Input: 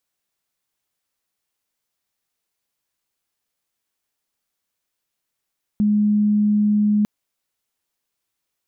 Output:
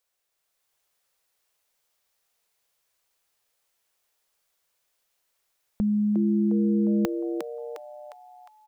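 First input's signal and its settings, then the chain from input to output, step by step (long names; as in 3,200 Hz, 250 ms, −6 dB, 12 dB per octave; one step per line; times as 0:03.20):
tone sine 209 Hz −14 dBFS 1.25 s
graphic EQ with 10 bands 125 Hz −7 dB, 250 Hz −11 dB, 500 Hz +5 dB
automatic gain control gain up to 4 dB
echo with shifted repeats 356 ms, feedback 46%, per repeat +130 Hz, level −7 dB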